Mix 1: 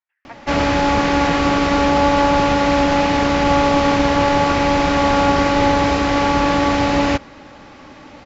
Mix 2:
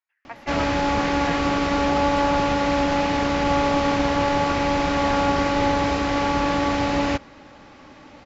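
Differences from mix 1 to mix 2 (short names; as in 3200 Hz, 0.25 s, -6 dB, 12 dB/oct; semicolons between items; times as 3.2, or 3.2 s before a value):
speech: remove air absorption 97 m; background -5.5 dB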